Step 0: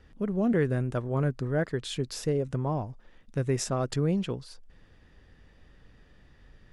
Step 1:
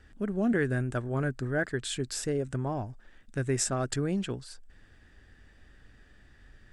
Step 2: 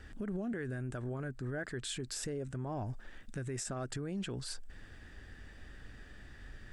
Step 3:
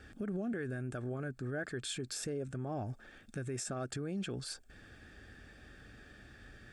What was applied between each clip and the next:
thirty-one-band EQ 160 Hz -8 dB, 500 Hz -6 dB, 1000 Hz -5 dB, 1600 Hz +7 dB, 8000 Hz +10 dB
compressor, threshold -34 dBFS, peak gain reduction 11 dB; limiter -36 dBFS, peak gain reduction 11.5 dB; gain +5 dB
notch comb 990 Hz; gain +1 dB

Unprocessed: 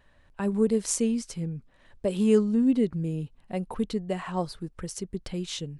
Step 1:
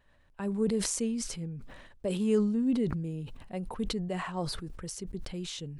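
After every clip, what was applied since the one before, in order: sustainer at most 40 dB/s; gain -6 dB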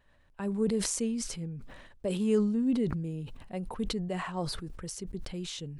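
nothing audible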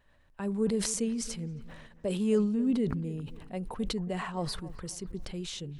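dark delay 0.27 s, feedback 36%, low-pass 2500 Hz, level -17 dB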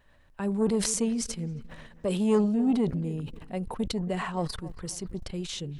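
core saturation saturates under 420 Hz; gain +4 dB

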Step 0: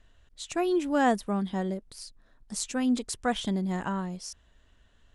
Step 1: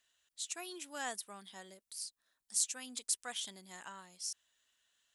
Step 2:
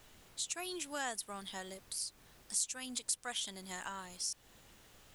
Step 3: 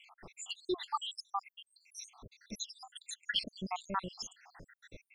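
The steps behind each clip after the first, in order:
differentiator; gain +1.5 dB
added noise pink -70 dBFS; compressor 2:1, threshold -49 dBFS, peak gain reduction 11.5 dB; gain +8.5 dB
random spectral dropouts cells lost 84%; air absorption 190 m; gain +15 dB

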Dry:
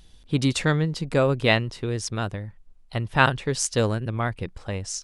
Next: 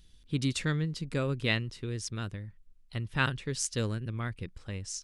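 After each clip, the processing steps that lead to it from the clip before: bell 740 Hz -11.5 dB 1.2 oct; gain -6.5 dB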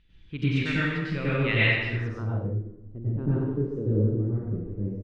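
doubler 47 ms -13 dB; plate-style reverb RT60 1.2 s, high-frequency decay 0.8×, pre-delay 85 ms, DRR -9.5 dB; low-pass sweep 2400 Hz -> 370 Hz, 1.93–2.6; gain -5.5 dB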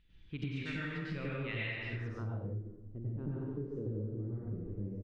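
compressor, threshold -30 dBFS, peak gain reduction 12 dB; gain -5.5 dB

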